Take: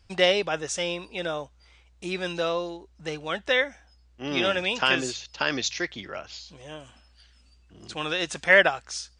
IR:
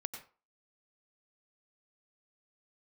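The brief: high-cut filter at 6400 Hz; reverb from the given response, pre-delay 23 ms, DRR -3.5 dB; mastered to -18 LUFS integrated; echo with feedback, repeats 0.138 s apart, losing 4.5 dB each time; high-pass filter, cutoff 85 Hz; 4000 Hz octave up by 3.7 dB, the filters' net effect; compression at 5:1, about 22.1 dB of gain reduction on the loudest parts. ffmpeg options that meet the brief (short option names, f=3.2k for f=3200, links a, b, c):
-filter_complex "[0:a]highpass=85,lowpass=6.4k,equalizer=f=4k:t=o:g=5.5,acompressor=threshold=-37dB:ratio=5,aecho=1:1:138|276|414|552|690|828|966|1104|1242:0.596|0.357|0.214|0.129|0.0772|0.0463|0.0278|0.0167|0.01,asplit=2[a][b];[1:a]atrim=start_sample=2205,adelay=23[c];[b][c]afir=irnorm=-1:irlink=0,volume=4.5dB[d];[a][d]amix=inputs=2:normalize=0,volume=15dB"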